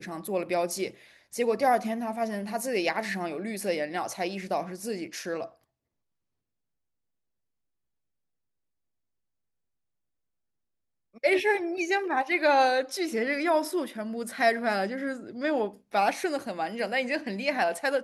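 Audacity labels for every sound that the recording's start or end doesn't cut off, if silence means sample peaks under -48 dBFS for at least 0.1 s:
1.330000	5.520000	sound
11.150000	15.770000	sound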